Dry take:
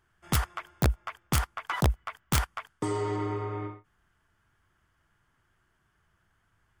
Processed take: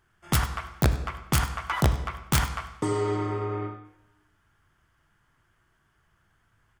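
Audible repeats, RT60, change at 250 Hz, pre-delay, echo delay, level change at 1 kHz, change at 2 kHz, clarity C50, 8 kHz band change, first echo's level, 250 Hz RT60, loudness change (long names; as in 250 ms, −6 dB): 1, 0.90 s, +3.5 dB, 7 ms, 99 ms, +3.0 dB, +3.5 dB, 9.5 dB, +3.0 dB, −17.5 dB, 0.95 s, +3.0 dB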